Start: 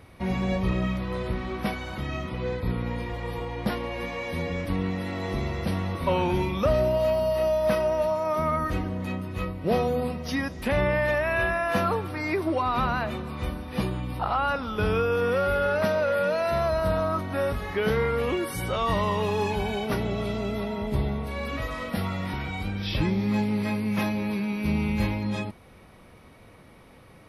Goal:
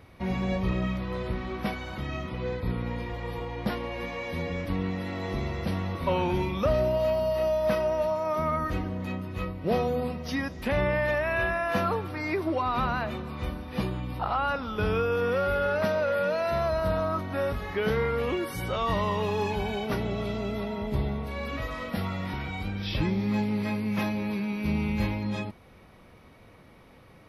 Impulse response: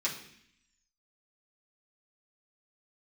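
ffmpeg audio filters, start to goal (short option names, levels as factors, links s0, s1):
-af "equalizer=f=9200:w=2.3:g=-7.5,volume=0.794"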